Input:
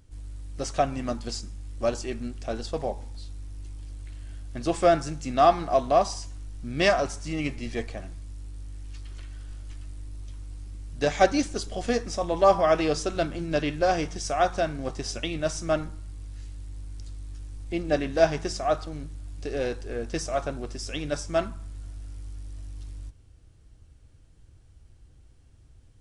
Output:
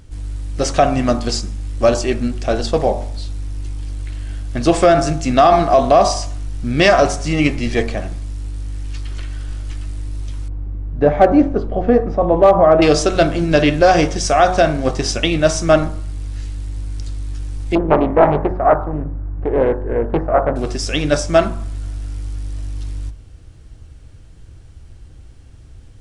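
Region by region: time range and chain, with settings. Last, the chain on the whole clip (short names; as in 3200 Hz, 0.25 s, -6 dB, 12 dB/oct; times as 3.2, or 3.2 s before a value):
10.48–12.82 LPF 1000 Hz + hard clip -12.5 dBFS
17.75–20.56 LPF 1400 Hz 24 dB/oct + Doppler distortion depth 0.73 ms
whole clip: high shelf 6800 Hz -5.5 dB; de-hum 45.74 Hz, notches 27; maximiser +15.5 dB; gain -1 dB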